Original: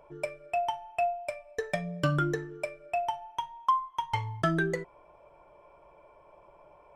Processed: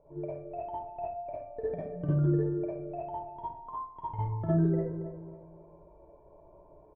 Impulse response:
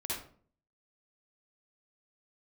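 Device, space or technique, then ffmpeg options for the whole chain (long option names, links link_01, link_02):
television next door: -filter_complex "[0:a]equalizer=frequency=1300:width=1.6:gain=-3.5,asplit=2[link_01][link_02];[link_02]adelay=275,lowpass=frequency=1600:poles=1,volume=-13.5dB,asplit=2[link_03][link_04];[link_04]adelay=275,lowpass=frequency=1600:poles=1,volume=0.37,asplit=2[link_05][link_06];[link_06]adelay=275,lowpass=frequency=1600:poles=1,volume=0.37,asplit=2[link_07][link_08];[link_08]adelay=275,lowpass=frequency=1600:poles=1,volume=0.37[link_09];[link_01][link_03][link_05][link_07][link_09]amix=inputs=5:normalize=0,acompressor=threshold=-30dB:ratio=4,lowpass=550[link_10];[1:a]atrim=start_sample=2205[link_11];[link_10][link_11]afir=irnorm=-1:irlink=0,volume=2dB"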